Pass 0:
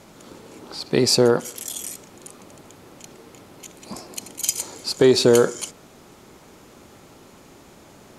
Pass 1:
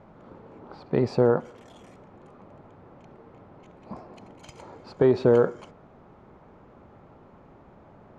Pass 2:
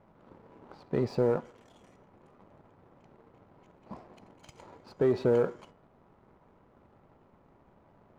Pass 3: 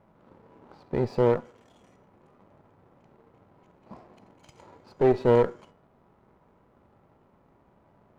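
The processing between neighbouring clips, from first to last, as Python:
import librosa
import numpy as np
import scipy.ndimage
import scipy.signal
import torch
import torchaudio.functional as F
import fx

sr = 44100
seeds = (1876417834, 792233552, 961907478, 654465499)

y1 = scipy.signal.sosfilt(scipy.signal.butter(2, 1100.0, 'lowpass', fs=sr, output='sos'), x)
y1 = fx.peak_eq(y1, sr, hz=320.0, db=-6.0, octaves=1.2)
y2 = fx.comb_fb(y1, sr, f0_hz=970.0, decay_s=0.34, harmonics='all', damping=0.0, mix_pct=70)
y2 = fx.leveller(y2, sr, passes=1)
y2 = y2 * librosa.db_to_amplitude(1.5)
y3 = fx.hpss(y2, sr, part='harmonic', gain_db=5)
y3 = fx.cheby_harmonics(y3, sr, harmonics=(2, 7), levels_db=(-8, -28), full_scale_db=-12.0)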